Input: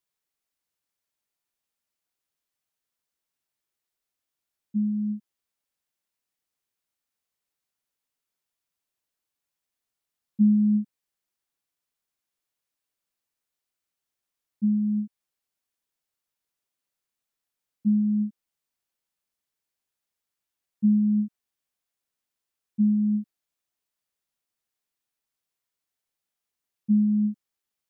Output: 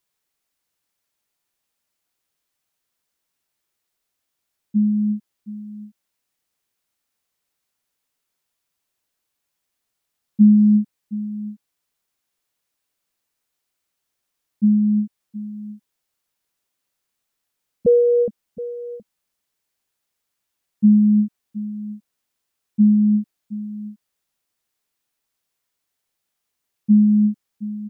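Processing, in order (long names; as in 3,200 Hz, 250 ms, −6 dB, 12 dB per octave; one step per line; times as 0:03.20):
0:17.86–0:18.28: frequency shifter +270 Hz
single-tap delay 720 ms −15.5 dB
level +7.5 dB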